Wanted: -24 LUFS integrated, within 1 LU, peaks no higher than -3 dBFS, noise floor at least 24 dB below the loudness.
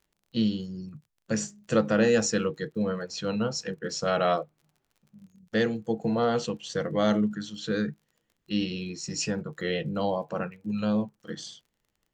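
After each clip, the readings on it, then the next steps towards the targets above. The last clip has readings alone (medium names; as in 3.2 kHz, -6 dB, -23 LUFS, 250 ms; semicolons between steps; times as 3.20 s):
tick rate 36 per s; loudness -28.5 LUFS; peak level -10.5 dBFS; loudness target -24.0 LUFS
-> de-click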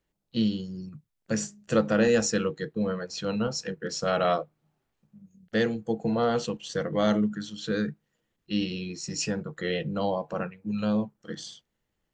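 tick rate 0 per s; loudness -28.5 LUFS; peak level -10.5 dBFS; loudness target -24.0 LUFS
-> trim +4.5 dB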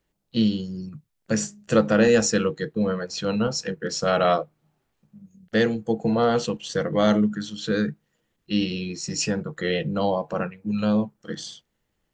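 loudness -24.0 LUFS; peak level -6.0 dBFS; noise floor -75 dBFS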